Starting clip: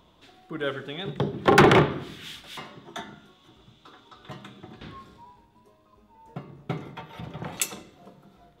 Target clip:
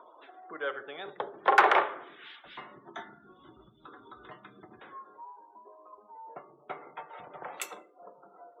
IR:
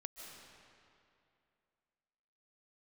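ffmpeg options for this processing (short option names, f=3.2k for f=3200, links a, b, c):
-filter_complex "[0:a]acompressor=mode=upward:threshold=-38dB:ratio=2.5,asplit=3[a][b][c];[a]afade=t=out:st=2.44:d=0.02[d];[b]asubboost=boost=9.5:cutoff=240,afade=t=in:st=2.44:d=0.02,afade=t=out:st=4.79:d=0.02[e];[c]afade=t=in:st=4.79:d=0.02[f];[d][e][f]amix=inputs=3:normalize=0,acrossover=split=470|3000[g][h][i];[g]acompressor=threshold=-36dB:ratio=10[j];[j][h][i]amix=inputs=3:normalize=0,acrossover=split=410 2100:gain=0.0631 1 0.224[k][l][m];[k][l][m]amix=inputs=3:normalize=0,afftdn=nr=34:nf=-55"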